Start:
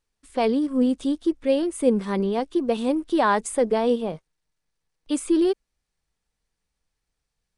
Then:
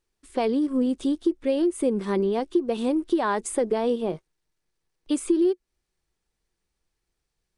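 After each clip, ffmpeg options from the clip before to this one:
-af "equalizer=f=360:t=o:w=0.28:g=10.5,acompressor=threshold=-20dB:ratio=4"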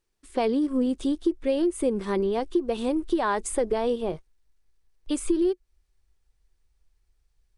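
-af "asubboost=boost=7:cutoff=76"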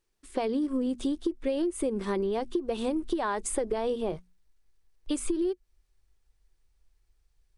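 -af "bandreject=f=60:t=h:w=6,bandreject=f=120:t=h:w=6,bandreject=f=180:t=h:w=6,bandreject=f=240:t=h:w=6,acompressor=threshold=-25dB:ratio=6"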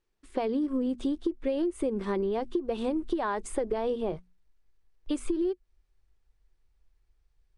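-af "lowpass=f=3k:p=1"

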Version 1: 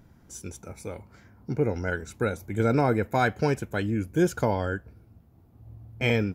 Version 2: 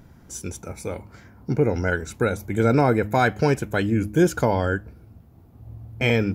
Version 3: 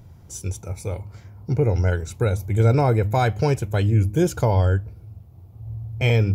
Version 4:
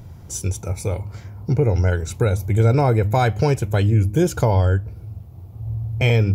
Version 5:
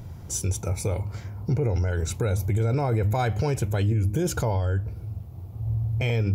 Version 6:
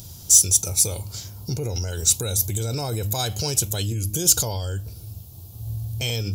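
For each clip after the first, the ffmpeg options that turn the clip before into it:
-filter_complex "[0:a]bandreject=f=104.7:t=h:w=4,bandreject=f=209.4:t=h:w=4,bandreject=f=314.1:t=h:w=4,asplit=2[a][b];[b]alimiter=limit=-17.5dB:level=0:latency=1:release=158,volume=1dB[c];[a][c]amix=inputs=2:normalize=0"
-af "equalizer=f=100:t=o:w=0.67:g=11,equalizer=f=250:t=o:w=0.67:g=-8,equalizer=f=1.6k:t=o:w=0.67:g=-8"
-af "acompressor=threshold=-28dB:ratio=1.5,volume=6.5dB"
-af "alimiter=limit=-17dB:level=0:latency=1:release=41"
-af "aexciter=amount=4.7:drive=9.9:freq=3.1k,volume=-3.5dB"

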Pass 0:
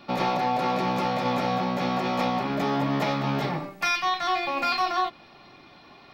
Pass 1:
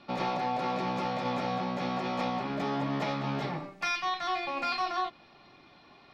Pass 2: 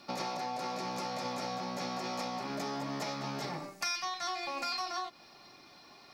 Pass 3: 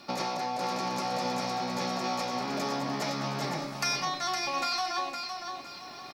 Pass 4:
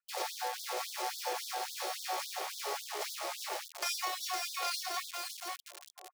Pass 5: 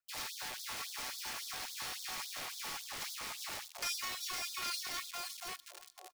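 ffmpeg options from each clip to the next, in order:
-af "lowpass=7.9k,volume=-6dB"
-af "lowshelf=f=190:g=-6.5,acompressor=threshold=-34dB:ratio=6,aexciter=amount=5.5:drive=5.1:freq=4.7k"
-af "aecho=1:1:512|1024|1536:0.501|0.125|0.0313,areverse,acompressor=mode=upward:threshold=-42dB:ratio=2.5,areverse,volume=4.5dB"
-filter_complex "[0:a]flanger=delay=2.8:depth=6:regen=-53:speed=0.53:shape=triangular,acrossover=split=720[a][b];[b]acrusher=bits=4:dc=4:mix=0:aa=0.000001[c];[a][c]amix=inputs=2:normalize=0,afftfilt=real='re*gte(b*sr/1024,310*pow(3400/310,0.5+0.5*sin(2*PI*3.6*pts/sr)))':imag='im*gte(b*sr/1024,310*pow(3400/310,0.5+0.5*sin(2*PI*3.6*pts/sr)))':win_size=1024:overlap=0.75,volume=3.5dB"
-filter_complex "[0:a]acrossover=split=1100[a][b];[a]aeval=exprs='(mod(106*val(0)+1,2)-1)/106':c=same[c];[c][b]amix=inputs=2:normalize=0,aecho=1:1:325|650|975:0.0708|0.0283|0.0113,volume=-2dB"

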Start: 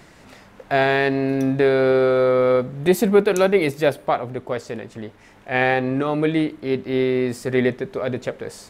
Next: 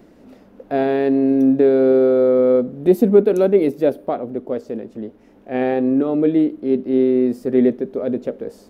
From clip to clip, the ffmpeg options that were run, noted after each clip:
-af "equalizer=f=125:t=o:w=1:g=-7,equalizer=f=250:t=o:w=1:g=11,equalizer=f=500:t=o:w=1:g=5,equalizer=f=1k:t=o:w=1:g=-5,equalizer=f=2k:t=o:w=1:g=-8,equalizer=f=4k:t=o:w=1:g=-5,equalizer=f=8k:t=o:w=1:g=-11,volume=-3dB"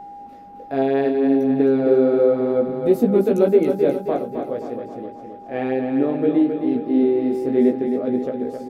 -filter_complex "[0:a]flanger=delay=15.5:depth=7.1:speed=0.61,aeval=exprs='val(0)+0.0178*sin(2*PI*810*n/s)':c=same,asplit=2[a][b];[b]aecho=0:1:266|532|798|1064|1330|1596:0.473|0.246|0.128|0.0665|0.0346|0.018[c];[a][c]amix=inputs=2:normalize=0"

